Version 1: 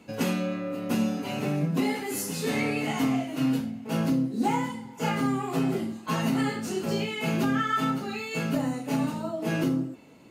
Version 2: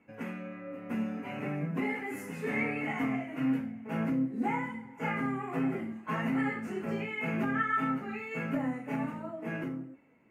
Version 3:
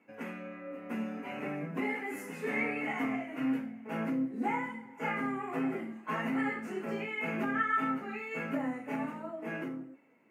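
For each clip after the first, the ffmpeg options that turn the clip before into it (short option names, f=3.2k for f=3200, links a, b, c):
-af "flanger=delay=3.5:depth=1.4:regen=79:speed=1.4:shape=triangular,highshelf=f=2.9k:t=q:w=3:g=-11.5,dynaudnorm=f=160:g=13:m=6.5dB,volume=-8.5dB"
-af "highpass=230"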